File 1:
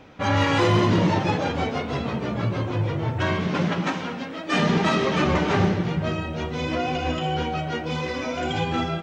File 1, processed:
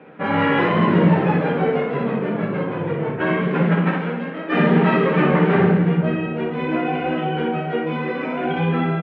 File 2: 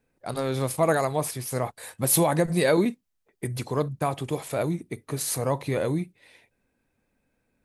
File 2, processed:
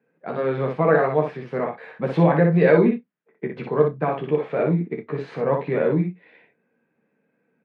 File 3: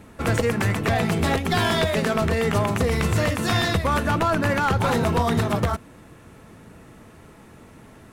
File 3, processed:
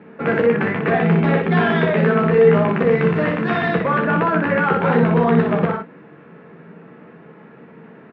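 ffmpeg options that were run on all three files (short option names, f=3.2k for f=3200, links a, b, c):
-filter_complex "[0:a]highpass=f=150:w=0.5412,highpass=f=150:w=1.3066,equalizer=f=180:t=q:w=4:g=8,equalizer=f=440:t=q:w=4:g=8,equalizer=f=1.6k:t=q:w=4:g=4,lowpass=f=2.6k:w=0.5412,lowpass=f=2.6k:w=1.3066,asplit=2[a][b];[b]adelay=29,volume=-12dB[c];[a][c]amix=inputs=2:normalize=0,aecho=1:1:13|60:0.562|0.631"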